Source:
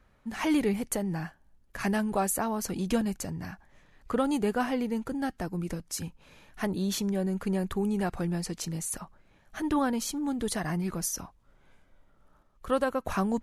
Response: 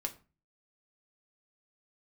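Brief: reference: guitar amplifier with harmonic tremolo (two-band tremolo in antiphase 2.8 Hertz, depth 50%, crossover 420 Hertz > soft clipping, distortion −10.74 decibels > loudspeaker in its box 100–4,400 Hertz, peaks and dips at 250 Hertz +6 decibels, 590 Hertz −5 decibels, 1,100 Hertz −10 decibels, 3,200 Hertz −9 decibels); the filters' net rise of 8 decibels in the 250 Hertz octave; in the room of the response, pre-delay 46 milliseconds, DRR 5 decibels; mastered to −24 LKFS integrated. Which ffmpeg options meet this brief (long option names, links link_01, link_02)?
-filter_complex "[0:a]equalizer=frequency=250:width_type=o:gain=6.5,asplit=2[link_01][link_02];[1:a]atrim=start_sample=2205,adelay=46[link_03];[link_02][link_03]afir=irnorm=-1:irlink=0,volume=-5.5dB[link_04];[link_01][link_04]amix=inputs=2:normalize=0,acrossover=split=420[link_05][link_06];[link_05]aeval=exprs='val(0)*(1-0.5/2+0.5/2*cos(2*PI*2.8*n/s))':channel_layout=same[link_07];[link_06]aeval=exprs='val(0)*(1-0.5/2-0.5/2*cos(2*PI*2.8*n/s))':channel_layout=same[link_08];[link_07][link_08]amix=inputs=2:normalize=0,asoftclip=threshold=-25.5dB,highpass=100,equalizer=frequency=250:width_type=q:width=4:gain=6,equalizer=frequency=590:width_type=q:width=4:gain=-5,equalizer=frequency=1100:width_type=q:width=4:gain=-10,equalizer=frequency=3200:width_type=q:width=4:gain=-9,lowpass=frequency=4400:width=0.5412,lowpass=frequency=4400:width=1.3066,volume=6dB"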